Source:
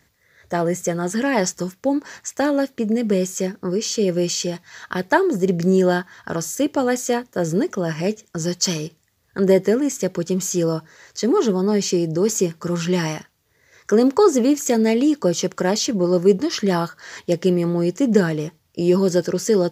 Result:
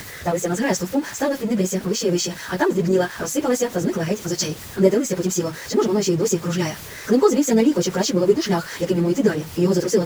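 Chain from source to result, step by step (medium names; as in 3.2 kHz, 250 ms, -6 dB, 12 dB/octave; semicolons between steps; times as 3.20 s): jump at every zero crossing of -29 dBFS; plain phase-vocoder stretch 0.51×; trim +2 dB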